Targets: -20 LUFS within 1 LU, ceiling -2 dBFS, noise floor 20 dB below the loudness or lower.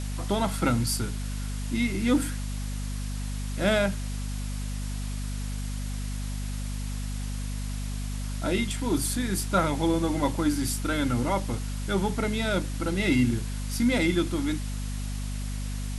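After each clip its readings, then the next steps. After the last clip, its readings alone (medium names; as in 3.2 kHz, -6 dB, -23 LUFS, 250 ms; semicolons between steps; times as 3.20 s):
hum 50 Hz; highest harmonic 250 Hz; hum level -29 dBFS; noise floor -32 dBFS; noise floor target -49 dBFS; loudness -28.5 LUFS; peak level -10.5 dBFS; loudness target -20.0 LUFS
-> hum notches 50/100/150/200/250 Hz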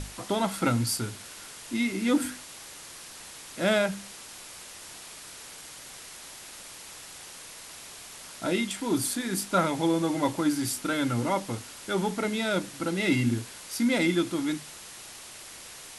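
hum not found; noise floor -45 dBFS; noise floor target -48 dBFS
-> noise print and reduce 6 dB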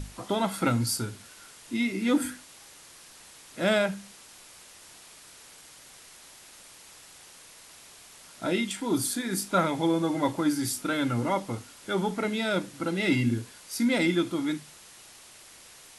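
noise floor -51 dBFS; loudness -28.0 LUFS; peak level -11.5 dBFS; loudness target -20.0 LUFS
-> trim +8 dB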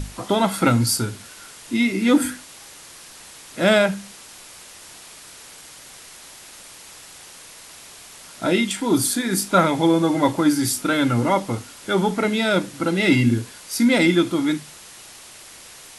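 loudness -20.0 LUFS; peak level -3.5 dBFS; noise floor -43 dBFS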